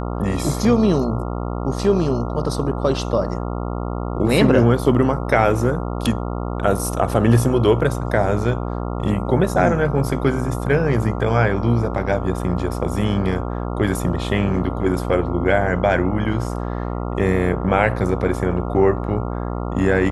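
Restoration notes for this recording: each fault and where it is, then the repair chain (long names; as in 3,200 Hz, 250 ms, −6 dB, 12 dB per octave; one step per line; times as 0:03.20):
mains buzz 60 Hz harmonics 23 −25 dBFS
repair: hum removal 60 Hz, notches 23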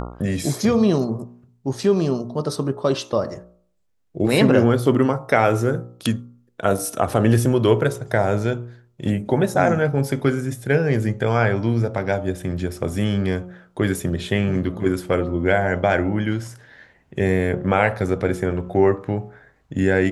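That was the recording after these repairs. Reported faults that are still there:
none of them is left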